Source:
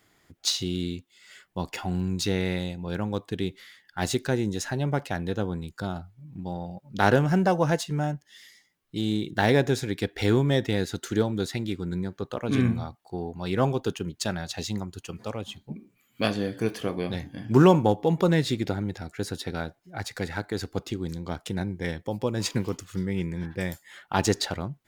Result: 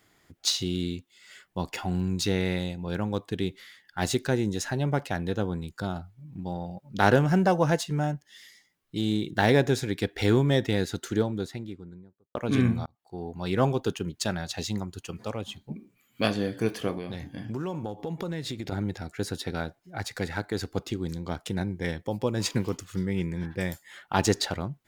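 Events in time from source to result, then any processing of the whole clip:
10.84–12.35 s: studio fade out
12.86–13.39 s: fade in linear
16.97–18.72 s: compression, threshold -30 dBFS

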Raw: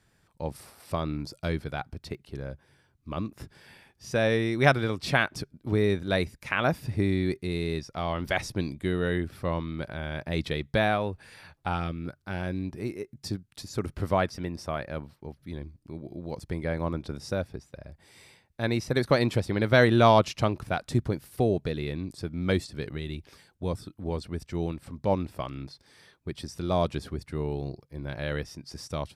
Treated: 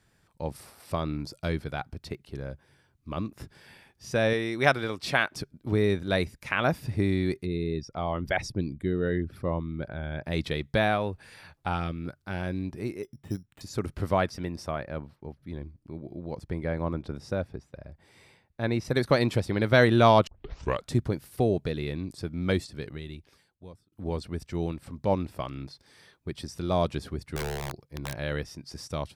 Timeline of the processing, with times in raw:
4.33–5.41 s: bass shelf 230 Hz -9 dB
7.45–10.24 s: resonances exaggerated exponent 1.5
13.03–13.61 s: careless resampling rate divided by 8×, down filtered, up hold
14.71–18.85 s: treble shelf 3.4 kHz -9 dB
20.27 s: tape start 0.61 s
22.44–23.92 s: fade out
27.36–28.15 s: integer overflow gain 26 dB

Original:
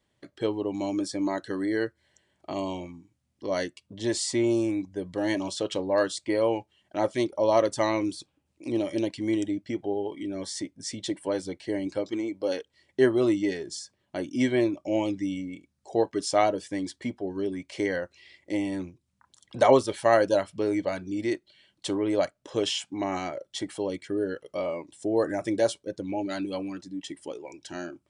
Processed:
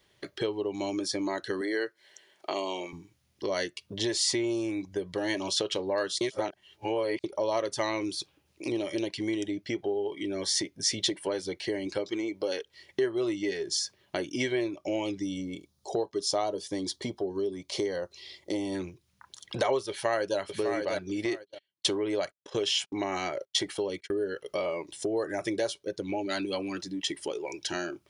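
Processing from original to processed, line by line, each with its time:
1.61–2.93 s: high-pass 330 Hz
6.21–7.24 s: reverse
15.19–18.75 s: high-order bell 2 kHz -10 dB 1.2 oct
19.89–20.38 s: echo throw 600 ms, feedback 15%, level -7.5 dB
21.25–24.27 s: gate -45 dBFS, range -31 dB
whole clip: graphic EQ with 31 bands 250 Hz -7 dB, 400 Hz +7 dB, 8 kHz -10 dB; compression 3:1, threshold -36 dBFS; tilt shelf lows -4.5 dB, about 1.3 kHz; trim +8.5 dB

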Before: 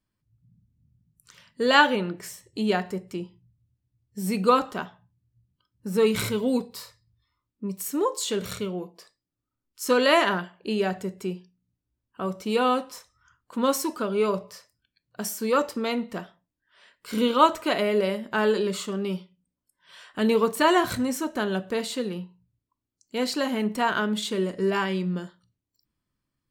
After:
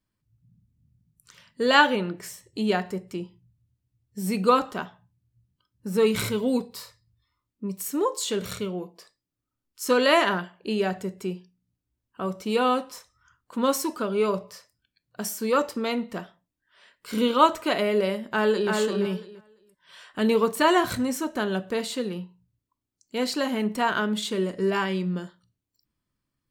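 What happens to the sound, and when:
18.31–18.72 s: echo throw 340 ms, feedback 15%, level -3 dB

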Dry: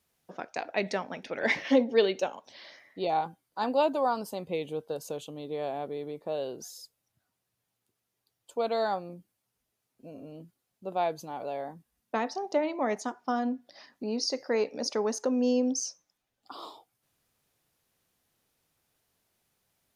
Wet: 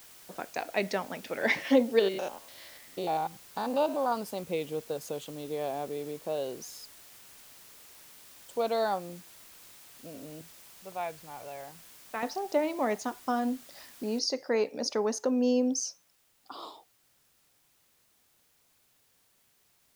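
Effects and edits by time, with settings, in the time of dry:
1.99–4.12 s: spectrogram pixelated in time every 100 ms
10.41–12.23 s: FFT filter 110 Hz 0 dB, 250 Hz -13 dB, 2.3 kHz 0 dB, 7.6 kHz -25 dB
14.19 s: noise floor step -53 dB -69 dB

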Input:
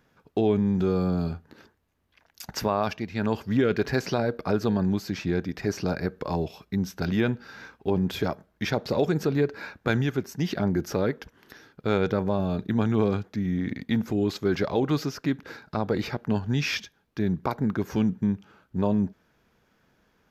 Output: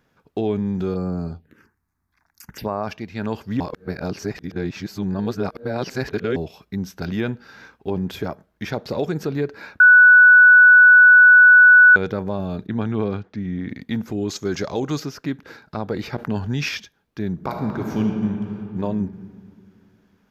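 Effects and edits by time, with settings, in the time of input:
0.94–2.88 s: touch-sensitive phaser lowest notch 500 Hz, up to 3.3 kHz, full sweep at -23 dBFS
3.60–6.36 s: reverse
8.15–8.70 s: dynamic bell 4.1 kHz, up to -5 dB, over -44 dBFS, Q 0.98
9.80–11.96 s: bleep 1.48 kHz -6 dBFS
12.67–13.70 s: low-pass 4.4 kHz
14.28–15.00 s: peaking EQ 6.5 kHz +14.5 dB 0.61 oct
16.13–16.69 s: level flattener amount 50%
17.32–18.81 s: reverb throw, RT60 2.6 s, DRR 1.5 dB

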